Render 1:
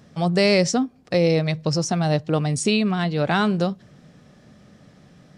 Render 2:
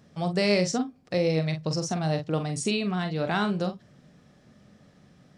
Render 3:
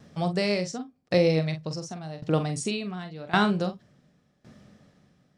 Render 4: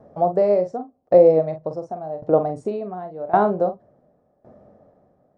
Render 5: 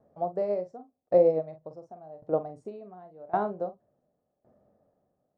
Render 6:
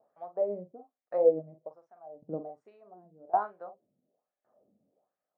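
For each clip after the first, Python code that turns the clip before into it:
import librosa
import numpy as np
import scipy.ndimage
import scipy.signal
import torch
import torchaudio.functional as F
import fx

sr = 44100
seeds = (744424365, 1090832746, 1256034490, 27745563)

y1 = fx.doubler(x, sr, ms=44.0, db=-8.0)
y1 = y1 * 10.0 ** (-6.5 / 20.0)
y2 = fx.tremolo_decay(y1, sr, direction='decaying', hz=0.9, depth_db=19)
y2 = y2 * 10.0 ** (5.5 / 20.0)
y3 = fx.curve_eq(y2, sr, hz=(100.0, 160.0, 660.0, 3000.0), db=(0, -5, 14, -22))
y4 = fx.upward_expand(y3, sr, threshold_db=-25.0, expansion=1.5)
y4 = y4 * 10.0 ** (-7.5 / 20.0)
y5 = fx.wah_lfo(y4, sr, hz=1.2, low_hz=200.0, high_hz=1900.0, q=2.4)
y5 = y5 * 10.0 ** (2.5 / 20.0)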